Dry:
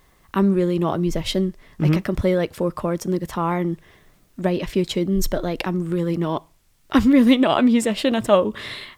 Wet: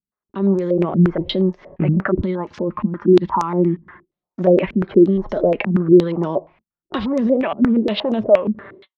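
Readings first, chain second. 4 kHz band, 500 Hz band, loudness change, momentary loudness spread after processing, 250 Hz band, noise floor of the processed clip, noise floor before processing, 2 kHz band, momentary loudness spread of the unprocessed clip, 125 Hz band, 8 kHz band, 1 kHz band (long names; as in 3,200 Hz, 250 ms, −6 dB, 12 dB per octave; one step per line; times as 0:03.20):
−2.5 dB, +5.0 dB, +3.0 dB, 10 LU, +2.0 dB, below −85 dBFS, −58 dBFS, −1.0 dB, 10 LU, +3.0 dB, below −15 dB, +0.5 dB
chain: fade-out on the ending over 1.05 s
high-pass filter 41 Hz 12 dB per octave
noise gate −50 dBFS, range −37 dB
parametric band 610 Hz +9 dB 2.5 octaves
in parallel at −1 dB: downward compressor, threshold −25 dBFS, peak gain reduction 18.5 dB
on the sum: brickwall limiter −10 dBFS, peak gain reduction 12 dB
automatic gain control
gain on a spectral selection 0:02.18–0:04.08, 370–830 Hz −12 dB
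two-band tremolo in antiphase 2.2 Hz, depth 50%, crossover 580 Hz
flanger 0.37 Hz, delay 4.7 ms, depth 1 ms, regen +57%
high-frequency loss of the air 230 metres
low-pass on a step sequencer 8.5 Hz 220–6,200 Hz
level −4 dB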